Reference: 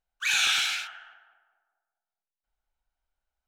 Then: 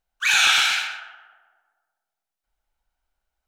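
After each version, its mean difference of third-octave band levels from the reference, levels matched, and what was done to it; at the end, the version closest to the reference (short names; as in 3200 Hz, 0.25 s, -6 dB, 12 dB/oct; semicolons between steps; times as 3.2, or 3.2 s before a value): 2.0 dB: dynamic EQ 940 Hz, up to +6 dB, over -41 dBFS, Q 0.82; on a send: tape echo 0.124 s, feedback 27%, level -5.5 dB, low-pass 3300 Hz; on the sum: gain +5 dB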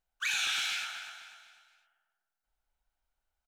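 5.5 dB: compressor 2.5:1, threshold -32 dBFS, peak gain reduction 8 dB; feedback echo 0.248 s, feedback 41%, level -11 dB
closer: first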